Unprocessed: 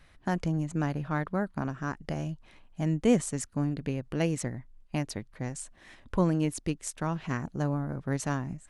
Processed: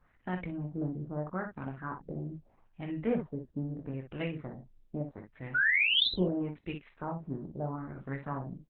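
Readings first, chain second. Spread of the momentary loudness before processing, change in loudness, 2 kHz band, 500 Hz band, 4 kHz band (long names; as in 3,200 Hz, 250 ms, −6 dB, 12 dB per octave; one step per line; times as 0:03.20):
10 LU, −2.0 dB, +8.5 dB, −5.0 dB, +13.5 dB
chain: auto-filter low-pass sine 0.78 Hz 350–2,800 Hz
sound drawn into the spectrogram rise, 0:05.54–0:06.22, 1,400–5,300 Hz −19 dBFS
on a send: ambience of single reflections 22 ms −7 dB, 47 ms −13.5 dB, 60 ms −7 dB
on the sum: level −8.5 dB
Opus 8 kbit/s 48,000 Hz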